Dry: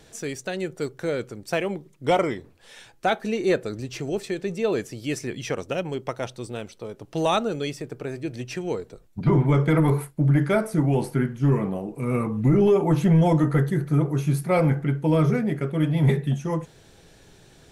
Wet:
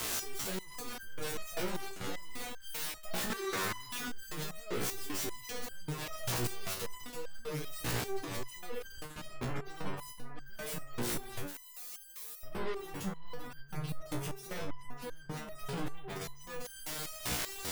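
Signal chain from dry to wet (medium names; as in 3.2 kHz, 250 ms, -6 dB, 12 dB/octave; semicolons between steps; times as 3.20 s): fuzz box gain 49 dB, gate -56 dBFS; 3.30–4.08 s: bass shelf 300 Hz -9 dB; integer overflow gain 17.5 dB; peak limiter -24.5 dBFS, peak gain reduction 7 dB; 11.46–12.43 s: pre-emphasis filter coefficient 0.97; repeats whose band climbs or falls 191 ms, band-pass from 1.4 kHz, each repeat 1.4 oct, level -9 dB; spectral gate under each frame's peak -30 dB strong; resonator arpeggio 5.1 Hz 60–1600 Hz; trim +3.5 dB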